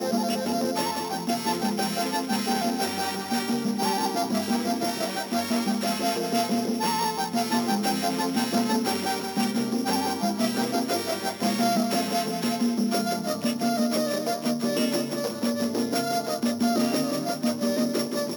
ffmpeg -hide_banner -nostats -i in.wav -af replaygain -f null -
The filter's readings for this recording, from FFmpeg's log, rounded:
track_gain = +8.1 dB
track_peak = 0.209